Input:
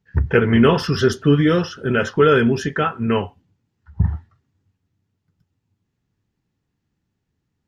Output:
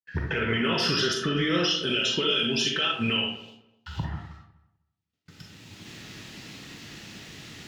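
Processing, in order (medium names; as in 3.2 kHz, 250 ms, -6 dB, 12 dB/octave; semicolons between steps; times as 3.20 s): recorder AGC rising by 16 dB/s; frequency weighting D; gate -53 dBFS, range -36 dB; 1.65–4.03 s: resonant high shelf 2.4 kHz +7.5 dB, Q 3; compression 5:1, threshold -23 dBFS, peak gain reduction 16.5 dB; peak limiter -18 dBFS, peak gain reduction 9 dB; filtered feedback delay 252 ms, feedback 18%, low-pass 1.6 kHz, level -17.5 dB; reverberation RT60 0.55 s, pre-delay 4 ms, DRR 0 dB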